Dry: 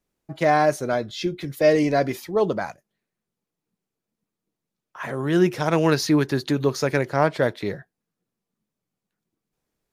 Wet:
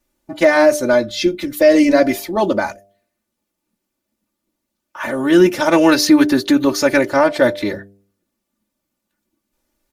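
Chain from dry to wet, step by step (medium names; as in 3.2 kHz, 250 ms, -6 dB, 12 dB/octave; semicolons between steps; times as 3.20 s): treble shelf 9.9 kHz +4.5 dB; comb 3.4 ms, depth 95%; de-hum 99.33 Hz, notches 7; loudness maximiser +7 dB; trim -1 dB; Opus 64 kbps 48 kHz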